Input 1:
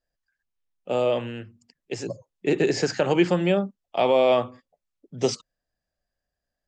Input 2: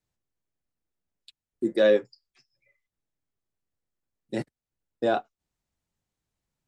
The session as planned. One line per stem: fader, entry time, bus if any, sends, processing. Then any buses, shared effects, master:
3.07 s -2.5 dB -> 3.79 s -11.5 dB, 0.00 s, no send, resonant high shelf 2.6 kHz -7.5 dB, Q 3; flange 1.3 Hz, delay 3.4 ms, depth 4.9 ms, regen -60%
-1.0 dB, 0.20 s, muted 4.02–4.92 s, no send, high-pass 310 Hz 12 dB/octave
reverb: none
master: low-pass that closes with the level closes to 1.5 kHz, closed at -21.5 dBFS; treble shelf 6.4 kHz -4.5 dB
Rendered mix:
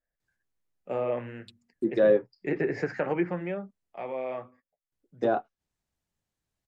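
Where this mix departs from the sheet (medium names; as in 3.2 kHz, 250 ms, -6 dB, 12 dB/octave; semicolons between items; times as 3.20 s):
stem 2: missing high-pass 310 Hz 12 dB/octave; master: missing treble shelf 6.4 kHz -4.5 dB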